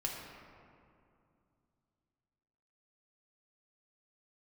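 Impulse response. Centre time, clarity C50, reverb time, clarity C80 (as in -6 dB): 90 ms, 1.5 dB, 2.5 s, 3.0 dB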